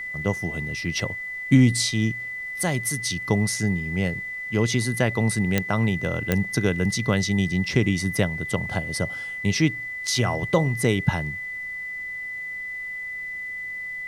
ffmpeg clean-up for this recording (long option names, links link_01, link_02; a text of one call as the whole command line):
ffmpeg -i in.wav -af "adeclick=threshold=4,bandreject=frequency=2000:width=30,agate=range=-21dB:threshold=-25dB" out.wav